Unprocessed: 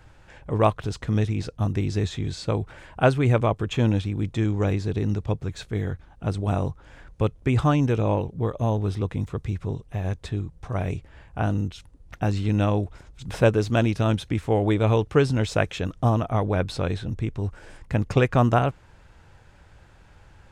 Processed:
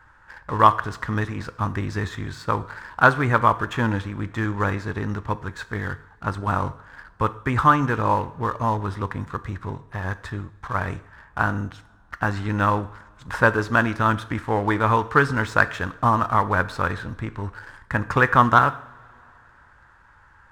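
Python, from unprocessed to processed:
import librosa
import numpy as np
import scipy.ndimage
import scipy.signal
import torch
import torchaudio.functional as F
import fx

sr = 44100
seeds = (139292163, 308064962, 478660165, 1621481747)

y = fx.band_shelf(x, sr, hz=1300.0, db=15.5, octaves=1.3)
y = fx.leveller(y, sr, passes=1)
y = fx.rev_double_slope(y, sr, seeds[0], early_s=0.59, late_s=3.1, knee_db=-21, drr_db=12.5)
y = F.gain(torch.from_numpy(y), -6.0).numpy()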